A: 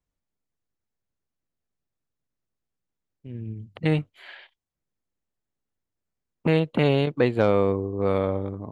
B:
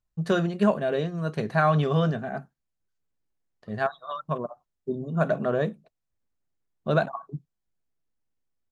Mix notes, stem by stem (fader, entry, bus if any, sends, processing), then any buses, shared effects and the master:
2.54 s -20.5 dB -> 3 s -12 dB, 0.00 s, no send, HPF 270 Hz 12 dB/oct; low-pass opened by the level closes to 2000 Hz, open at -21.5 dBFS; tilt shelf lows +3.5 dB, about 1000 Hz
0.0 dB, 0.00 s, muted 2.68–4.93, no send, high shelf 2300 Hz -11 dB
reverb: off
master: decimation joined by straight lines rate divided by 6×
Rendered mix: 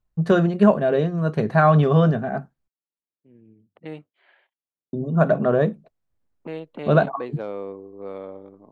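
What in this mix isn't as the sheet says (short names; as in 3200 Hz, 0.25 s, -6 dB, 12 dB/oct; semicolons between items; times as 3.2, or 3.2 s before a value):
stem B 0.0 dB -> +7.0 dB; master: missing decimation joined by straight lines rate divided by 6×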